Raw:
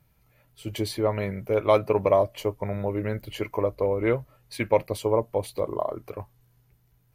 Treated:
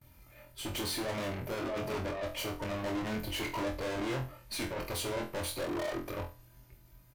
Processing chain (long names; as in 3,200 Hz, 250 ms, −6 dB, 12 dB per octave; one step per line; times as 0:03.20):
noise gate with hold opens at −58 dBFS
comb filter 3.3 ms, depth 52%
compressor whose output falls as the input rises −23 dBFS, ratio −0.5
tube saturation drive 40 dB, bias 0.55
flutter between parallel walls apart 4 metres, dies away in 0.31 s
level +5 dB